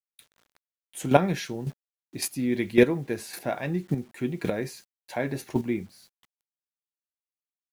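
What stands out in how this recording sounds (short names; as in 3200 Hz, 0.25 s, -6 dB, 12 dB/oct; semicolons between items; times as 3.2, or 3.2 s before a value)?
a quantiser's noise floor 10-bit, dither none; chopped level 1.8 Hz, depth 65%, duty 10%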